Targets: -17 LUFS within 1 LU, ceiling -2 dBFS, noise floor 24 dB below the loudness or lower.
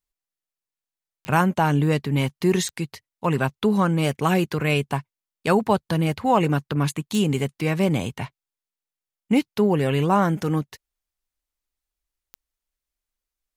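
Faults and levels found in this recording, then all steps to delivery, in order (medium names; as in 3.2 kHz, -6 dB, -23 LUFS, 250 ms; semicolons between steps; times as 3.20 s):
clicks found 4; loudness -22.5 LUFS; peak level -6.0 dBFS; loudness target -17.0 LUFS
-> de-click; trim +5.5 dB; peak limiter -2 dBFS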